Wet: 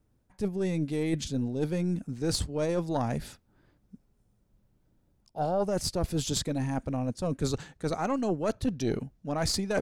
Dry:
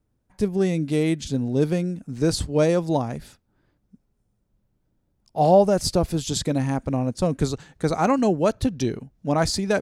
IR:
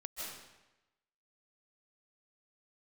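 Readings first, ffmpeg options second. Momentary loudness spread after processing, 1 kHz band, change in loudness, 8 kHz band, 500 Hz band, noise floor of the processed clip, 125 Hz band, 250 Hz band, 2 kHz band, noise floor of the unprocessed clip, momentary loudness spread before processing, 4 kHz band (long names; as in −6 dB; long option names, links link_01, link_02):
5 LU, −9.5 dB, −8.0 dB, −4.0 dB, −9.0 dB, −70 dBFS, −6.5 dB, −7.5 dB, −7.0 dB, −72 dBFS, 9 LU, −4.0 dB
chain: -af "areverse,acompressor=threshold=-27dB:ratio=12,areverse,aeval=exprs='0.126*(cos(1*acos(clip(val(0)/0.126,-1,1)))-cos(1*PI/2))+0.0282*(cos(2*acos(clip(val(0)/0.126,-1,1)))-cos(2*PI/2))':channel_layout=same,volume=2dB"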